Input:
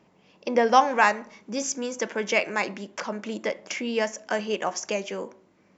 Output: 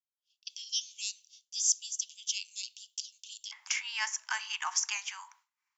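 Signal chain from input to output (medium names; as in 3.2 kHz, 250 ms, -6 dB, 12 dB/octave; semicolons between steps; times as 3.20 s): steep high-pass 3 kHz 72 dB/octave, from 3.51 s 870 Hz; expander -57 dBFS; treble shelf 4.8 kHz +10.5 dB; trim -3 dB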